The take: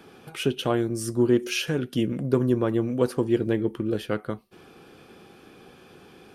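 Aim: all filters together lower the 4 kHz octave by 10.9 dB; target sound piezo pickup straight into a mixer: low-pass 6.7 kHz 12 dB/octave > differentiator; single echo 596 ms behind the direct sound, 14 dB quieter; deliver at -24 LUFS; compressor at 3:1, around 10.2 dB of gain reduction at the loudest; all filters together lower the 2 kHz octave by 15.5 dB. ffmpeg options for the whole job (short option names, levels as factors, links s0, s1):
-af "equalizer=f=2000:t=o:g=-6,equalizer=f=4000:t=o:g=-3.5,acompressor=threshold=0.0316:ratio=3,lowpass=6700,aderivative,aecho=1:1:596:0.2,volume=18.8"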